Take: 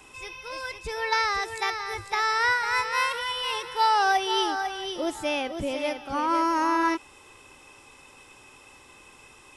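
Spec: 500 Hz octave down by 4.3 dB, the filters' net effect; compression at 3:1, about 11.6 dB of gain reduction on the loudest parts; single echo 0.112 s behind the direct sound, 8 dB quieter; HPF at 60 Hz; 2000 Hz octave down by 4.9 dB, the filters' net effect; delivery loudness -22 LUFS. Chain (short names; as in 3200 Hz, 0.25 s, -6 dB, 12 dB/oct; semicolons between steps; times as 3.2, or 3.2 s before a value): HPF 60 Hz; bell 500 Hz -5.5 dB; bell 2000 Hz -6 dB; compressor 3:1, threshold -37 dBFS; echo 0.112 s -8 dB; gain +14.5 dB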